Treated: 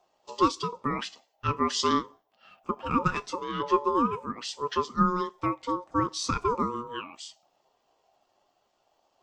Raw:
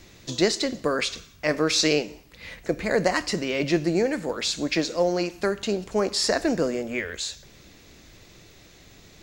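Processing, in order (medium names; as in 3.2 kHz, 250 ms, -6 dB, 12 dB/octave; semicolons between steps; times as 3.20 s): ring modulator 720 Hz; spectral contrast expander 1.5:1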